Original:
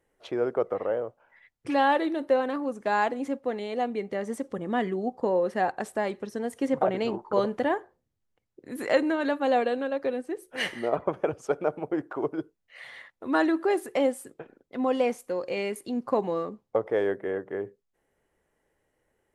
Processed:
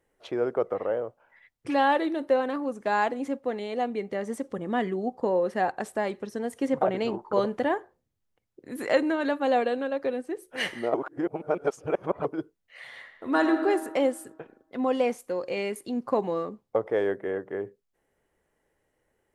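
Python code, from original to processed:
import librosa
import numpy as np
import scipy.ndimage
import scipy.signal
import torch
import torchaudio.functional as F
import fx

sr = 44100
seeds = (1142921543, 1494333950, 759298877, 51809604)

y = fx.reverb_throw(x, sr, start_s=12.83, length_s=0.81, rt60_s=1.6, drr_db=6.0)
y = fx.edit(y, sr, fx.reverse_span(start_s=10.94, length_s=1.31), tone=tone)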